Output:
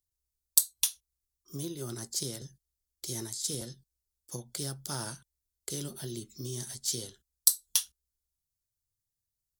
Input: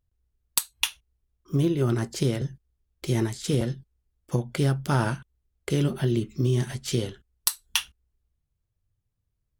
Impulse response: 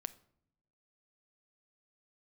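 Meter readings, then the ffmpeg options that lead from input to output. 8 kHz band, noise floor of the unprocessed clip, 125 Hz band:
+3.0 dB, −78 dBFS, −17.0 dB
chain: -filter_complex "[0:a]bass=frequency=250:gain=-3,treble=frequency=4000:gain=-7,acrossover=split=110|2200[link_01][link_02][link_03];[link_03]aexciter=amount=8.3:drive=9:freq=3900[link_04];[link_01][link_02][link_04]amix=inputs=3:normalize=0,volume=-14dB"

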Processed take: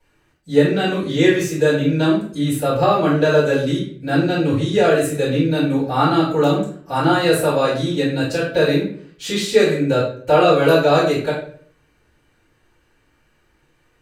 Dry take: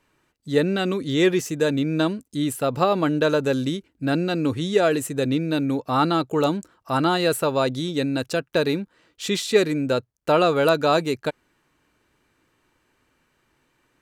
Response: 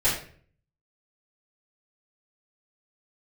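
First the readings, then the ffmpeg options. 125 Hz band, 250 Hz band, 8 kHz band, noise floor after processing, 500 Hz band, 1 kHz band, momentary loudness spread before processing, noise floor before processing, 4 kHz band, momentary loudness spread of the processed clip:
+6.5 dB, +4.5 dB, +2.5 dB, −61 dBFS, +5.5 dB, +4.5 dB, 7 LU, −68 dBFS, +3.0 dB, 7 LU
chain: -filter_complex "[1:a]atrim=start_sample=2205,asetrate=40572,aresample=44100[link_01];[0:a][link_01]afir=irnorm=-1:irlink=0,volume=-9dB"

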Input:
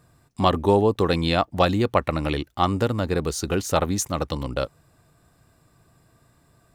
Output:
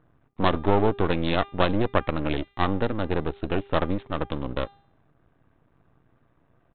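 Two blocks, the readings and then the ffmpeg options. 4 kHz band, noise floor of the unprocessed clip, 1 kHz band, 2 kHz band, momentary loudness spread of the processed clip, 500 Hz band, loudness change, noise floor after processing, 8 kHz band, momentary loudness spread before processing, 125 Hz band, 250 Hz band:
−4.5 dB, −61 dBFS, −3.0 dB, −0.5 dB, 8 LU, −3.5 dB, −3.0 dB, −66 dBFS, below −40 dB, 8 LU, −3.5 dB, −2.0 dB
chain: -af "adynamicsmooth=sensitivity=2.5:basefreq=2200,equalizer=frequency=300:width_type=o:width=0.39:gain=4,aresample=8000,aeval=exprs='max(val(0),0)':channel_layout=same,aresample=44100,bandreject=frequency=400.1:width_type=h:width=4,bandreject=frequency=800.2:width_type=h:width=4,bandreject=frequency=1200.3:width_type=h:width=4,bandreject=frequency=1600.4:width_type=h:width=4,bandreject=frequency=2000.5:width_type=h:width=4,bandreject=frequency=2400.6:width_type=h:width=4,bandreject=frequency=2800.7:width_type=h:width=4,bandreject=frequency=3200.8:width_type=h:width=4,bandreject=frequency=3600.9:width_type=h:width=4,bandreject=frequency=4001:width_type=h:width=4,bandreject=frequency=4401.1:width_type=h:width=4,bandreject=frequency=4801.2:width_type=h:width=4,bandreject=frequency=5201.3:width_type=h:width=4,bandreject=frequency=5601.4:width_type=h:width=4,bandreject=frequency=6001.5:width_type=h:width=4,bandreject=frequency=6401.6:width_type=h:width=4,bandreject=frequency=6801.7:width_type=h:width=4,bandreject=frequency=7201.8:width_type=h:width=4,bandreject=frequency=7601.9:width_type=h:width=4,bandreject=frequency=8002:width_type=h:width=4,bandreject=frequency=8402.1:width_type=h:width=4,bandreject=frequency=8802.2:width_type=h:width=4,bandreject=frequency=9202.3:width_type=h:width=4,bandreject=frequency=9602.4:width_type=h:width=4,bandreject=frequency=10002.5:width_type=h:width=4,bandreject=frequency=10402.6:width_type=h:width=4,bandreject=frequency=10802.7:width_type=h:width=4,bandreject=frequency=11202.8:width_type=h:width=4,bandreject=frequency=11602.9:width_type=h:width=4,bandreject=frequency=12003:width_type=h:width=4,bandreject=frequency=12403.1:width_type=h:width=4,bandreject=frequency=12803.2:width_type=h:width=4,bandreject=frequency=13203.3:width_type=h:width=4,bandreject=frequency=13603.4:width_type=h:width=4"

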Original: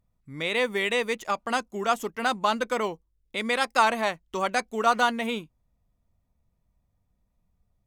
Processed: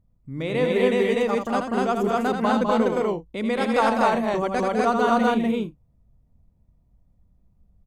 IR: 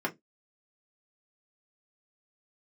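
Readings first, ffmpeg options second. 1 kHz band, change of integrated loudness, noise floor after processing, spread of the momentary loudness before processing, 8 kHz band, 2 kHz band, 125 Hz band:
+2.5 dB, +4.0 dB, −63 dBFS, 10 LU, −4.0 dB, −1.5 dB, +11.5 dB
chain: -af "tiltshelf=frequency=740:gain=8.5,aecho=1:1:81.63|204.1|247.8|282.8:0.501|0.501|1|0.251"

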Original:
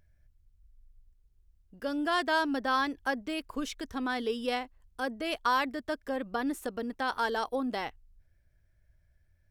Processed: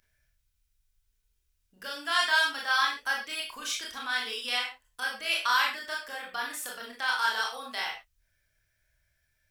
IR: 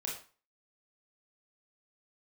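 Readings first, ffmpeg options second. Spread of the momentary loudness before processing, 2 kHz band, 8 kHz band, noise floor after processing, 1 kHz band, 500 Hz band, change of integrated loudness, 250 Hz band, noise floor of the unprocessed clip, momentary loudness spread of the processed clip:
9 LU, +6.5 dB, +10.0 dB, −75 dBFS, 0.0 dB, −9.5 dB, +3.0 dB, −17.5 dB, −68 dBFS, 12 LU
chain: -filter_complex "[0:a]tiltshelf=frequency=920:gain=-9.5,acrossover=split=700[link_01][link_02];[link_01]acompressor=threshold=-50dB:ratio=6[link_03];[link_03][link_02]amix=inputs=2:normalize=0[link_04];[1:a]atrim=start_sample=2205,afade=type=out:start_time=0.2:duration=0.01,atrim=end_sample=9261[link_05];[link_04][link_05]afir=irnorm=-1:irlink=0"

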